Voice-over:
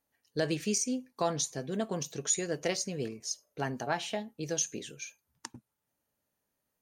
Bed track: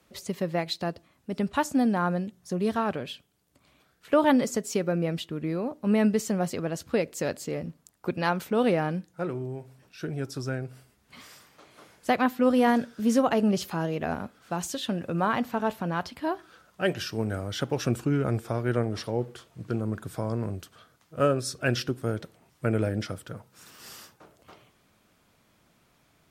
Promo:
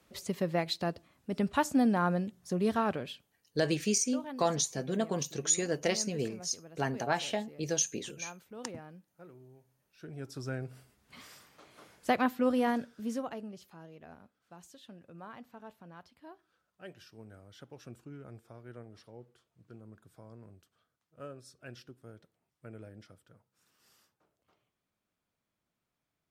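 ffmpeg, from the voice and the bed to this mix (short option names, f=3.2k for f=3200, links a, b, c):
-filter_complex "[0:a]adelay=3200,volume=1.5dB[a];[1:a]volume=15.5dB,afade=t=out:st=2.87:d=0.79:silence=0.112202,afade=t=in:st=9.85:d=0.9:silence=0.125893,afade=t=out:st=12.06:d=1.44:silence=0.11885[b];[a][b]amix=inputs=2:normalize=0"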